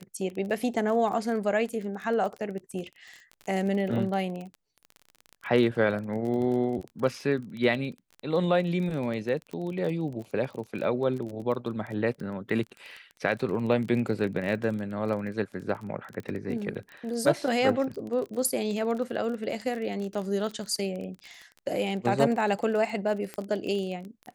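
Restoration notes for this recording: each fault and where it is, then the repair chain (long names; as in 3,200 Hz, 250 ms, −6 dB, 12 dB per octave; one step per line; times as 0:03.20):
surface crackle 25 per second −33 dBFS
0:23.34: click −20 dBFS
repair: click removal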